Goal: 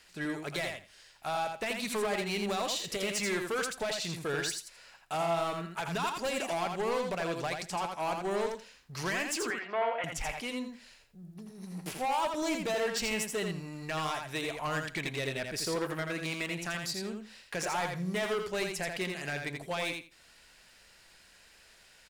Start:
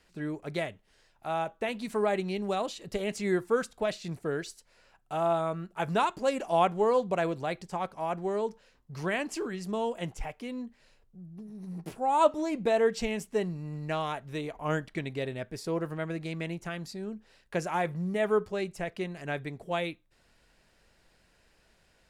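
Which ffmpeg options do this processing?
ffmpeg -i in.wav -filter_complex "[0:a]tiltshelf=frequency=970:gain=-7,alimiter=limit=-23.5dB:level=0:latency=1:release=124,asoftclip=type=hard:threshold=-32.5dB,asettb=1/sr,asplit=3[link_01][link_02][link_03];[link_01]atrim=end=9.504[link_04];[link_02]atrim=start=9.5:end=10.04,asetpts=PTS-STARTPTS,afade=type=in:duration=0.004:curve=qsin,afade=type=out:start_time=0.536:duration=0.004:curve=qsin,highpass=500,equalizer=frequency=690:width_type=q:width=4:gain=8,equalizer=frequency=1400:width_type=q:width=4:gain=8,equalizer=frequency=2200:width_type=q:width=4:gain=5,lowpass=frequency=2600:width=0.5412,lowpass=frequency=2600:width=1.3066[link_05];[link_03]atrim=start=10.036[link_06];[link_04][link_05]acrossfade=duration=0.004:curve1=hsin:curve2=qsin[link_07];[link_07][link_06]acrossfade=duration=0.004:curve1=qsin:curve2=hsin,aecho=1:1:83|166|249:0.562|0.0956|0.0163,volume=3.5dB" out.wav

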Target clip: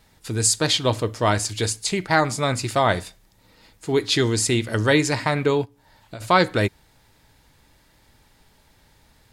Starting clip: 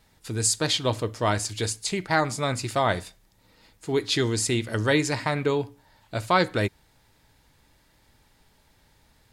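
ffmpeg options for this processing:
ffmpeg -i in.wav -filter_complex "[0:a]asplit=3[link_01][link_02][link_03];[link_01]afade=type=out:start_time=5.64:duration=0.02[link_04];[link_02]acompressor=threshold=-38dB:ratio=16,afade=type=in:start_time=5.64:duration=0.02,afade=type=out:start_time=6.2:duration=0.02[link_05];[link_03]afade=type=in:start_time=6.2:duration=0.02[link_06];[link_04][link_05][link_06]amix=inputs=3:normalize=0,volume=4dB" out.wav

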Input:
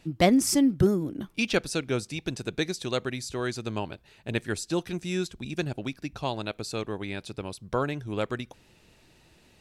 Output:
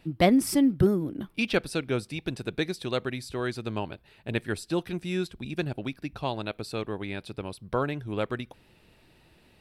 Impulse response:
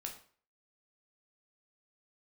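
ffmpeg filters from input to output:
-af "equalizer=frequency=6600:width=2:gain=-12"

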